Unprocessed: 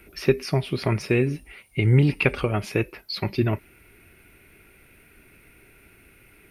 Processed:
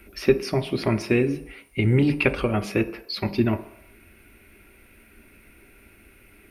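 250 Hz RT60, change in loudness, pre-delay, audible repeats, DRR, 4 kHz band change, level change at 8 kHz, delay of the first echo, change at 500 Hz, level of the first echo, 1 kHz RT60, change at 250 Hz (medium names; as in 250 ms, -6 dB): 0.55 s, 0.0 dB, 3 ms, no echo, 9.0 dB, 0.0 dB, no reading, no echo, +1.5 dB, no echo, 0.75 s, +2.5 dB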